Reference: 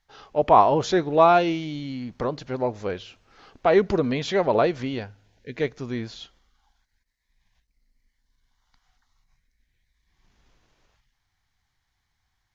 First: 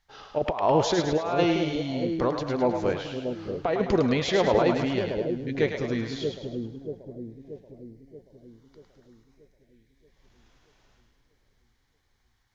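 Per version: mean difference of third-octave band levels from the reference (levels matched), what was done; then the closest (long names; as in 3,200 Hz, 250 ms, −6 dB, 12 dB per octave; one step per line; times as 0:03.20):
7.5 dB: compressor whose output falls as the input rises −20 dBFS, ratio −0.5
on a send: echo with a time of its own for lows and highs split 550 Hz, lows 632 ms, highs 105 ms, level −5 dB
on the sum: level −1.5 dB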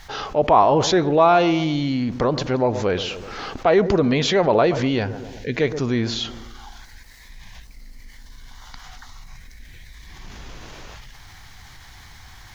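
5.5 dB: on a send: bucket-brigade delay 124 ms, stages 1,024, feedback 37%, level −18 dB
on the sum: envelope flattener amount 50%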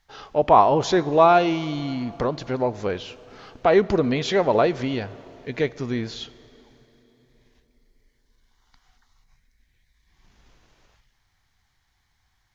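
2.5 dB: in parallel at −0.5 dB: downward compressor, threshold −32 dBFS, peak gain reduction 20 dB
on the sum: dense smooth reverb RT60 4.2 s, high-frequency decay 0.8×, DRR 18.5 dB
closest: third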